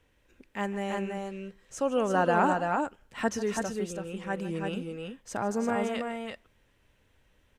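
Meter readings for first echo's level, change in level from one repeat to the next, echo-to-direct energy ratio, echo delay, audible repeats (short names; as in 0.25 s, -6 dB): -16.0 dB, no steady repeat, -3.5 dB, 0.151 s, 2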